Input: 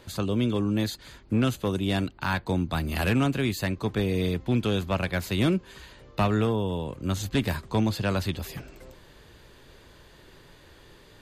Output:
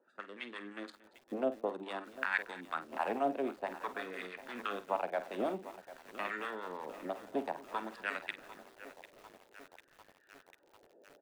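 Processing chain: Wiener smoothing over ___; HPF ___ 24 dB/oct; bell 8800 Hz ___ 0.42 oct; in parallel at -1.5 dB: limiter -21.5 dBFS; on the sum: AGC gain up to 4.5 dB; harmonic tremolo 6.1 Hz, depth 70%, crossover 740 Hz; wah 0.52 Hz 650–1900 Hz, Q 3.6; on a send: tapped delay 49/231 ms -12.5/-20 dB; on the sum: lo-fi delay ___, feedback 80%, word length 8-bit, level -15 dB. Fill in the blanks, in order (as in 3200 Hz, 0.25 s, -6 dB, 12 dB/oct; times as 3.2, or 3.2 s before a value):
41 samples, 220 Hz, +13 dB, 0.747 s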